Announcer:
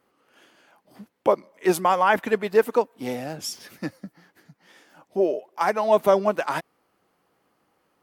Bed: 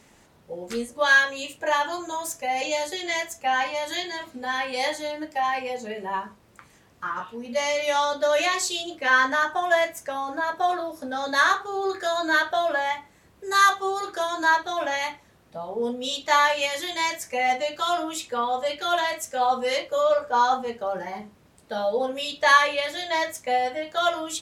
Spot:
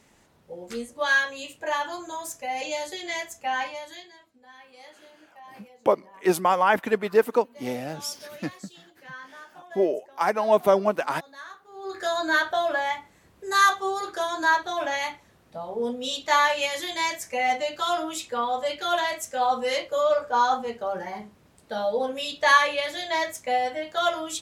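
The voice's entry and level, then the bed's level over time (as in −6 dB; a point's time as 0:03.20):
4.60 s, −1.0 dB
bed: 0:03.63 −4 dB
0:04.28 −22.5 dB
0:11.61 −22.5 dB
0:12.02 −1 dB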